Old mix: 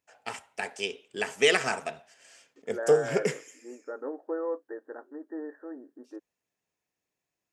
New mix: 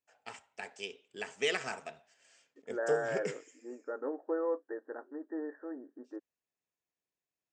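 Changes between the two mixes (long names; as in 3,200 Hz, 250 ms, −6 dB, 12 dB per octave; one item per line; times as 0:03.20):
first voice −9.0 dB
master: add elliptic low-pass filter 8,000 Hz, stop band 60 dB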